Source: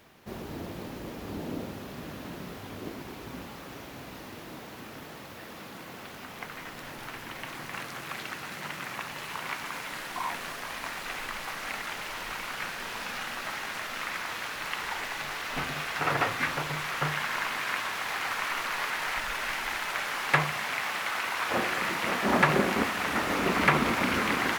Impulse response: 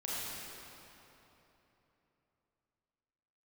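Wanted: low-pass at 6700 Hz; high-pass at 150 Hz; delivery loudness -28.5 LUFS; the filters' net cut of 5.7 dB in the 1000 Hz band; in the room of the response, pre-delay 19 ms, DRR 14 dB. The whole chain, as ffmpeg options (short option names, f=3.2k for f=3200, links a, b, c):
-filter_complex "[0:a]highpass=150,lowpass=6.7k,equalizer=f=1k:t=o:g=-7.5,asplit=2[a][b];[1:a]atrim=start_sample=2205,adelay=19[c];[b][c]afir=irnorm=-1:irlink=0,volume=-18dB[d];[a][d]amix=inputs=2:normalize=0,volume=4.5dB"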